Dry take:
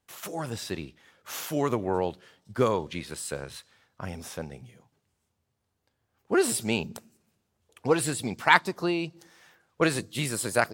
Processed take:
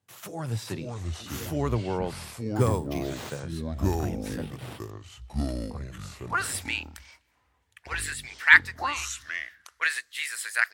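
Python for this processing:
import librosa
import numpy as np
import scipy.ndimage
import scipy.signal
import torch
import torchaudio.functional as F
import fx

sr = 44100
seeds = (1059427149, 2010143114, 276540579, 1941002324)

y = fx.sample_hold(x, sr, seeds[0], rate_hz=8500.0, jitter_pct=0, at=(2.52, 3.4))
y = fx.filter_sweep_highpass(y, sr, from_hz=110.0, to_hz=1800.0, start_s=5.44, end_s=6.55, q=4.5)
y = fx.echo_pitch(y, sr, ms=369, semitones=-5, count=2, db_per_echo=-3.0)
y = F.gain(torch.from_numpy(y), -3.5).numpy()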